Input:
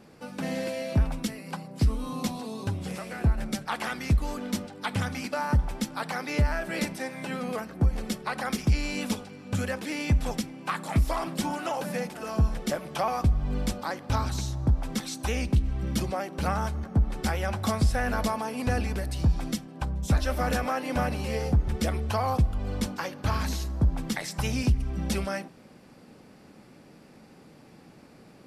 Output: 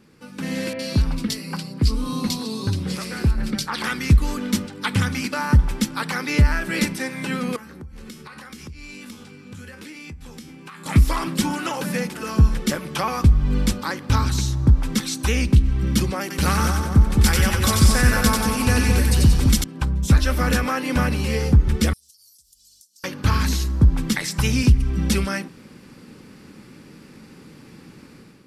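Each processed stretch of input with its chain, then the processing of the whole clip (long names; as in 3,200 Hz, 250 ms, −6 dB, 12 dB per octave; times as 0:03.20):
0:00.73–0:03.84: parametric band 4,600 Hz +8 dB 0.5 octaves + downward compressor 2 to 1, threshold −26 dBFS + multiband delay without the direct sound lows, highs 60 ms, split 2,200 Hz
0:07.56–0:10.86: tuned comb filter 78 Hz, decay 0.24 s, mix 80% + downward compressor 16 to 1, threshold −42 dBFS
0:16.21–0:19.64: high-shelf EQ 4,400 Hz +8 dB + echo with a time of its own for lows and highs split 1,100 Hz, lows 213 ms, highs 92 ms, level −3 dB
0:21.93–0:23.04: inverse Chebyshev high-pass filter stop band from 2,200 Hz, stop band 50 dB + downward compressor 16 to 1, threshold −59 dBFS + one half of a high-frequency compander encoder only
whole clip: parametric band 680 Hz −13.5 dB 0.65 octaves; automatic gain control gain up to 9 dB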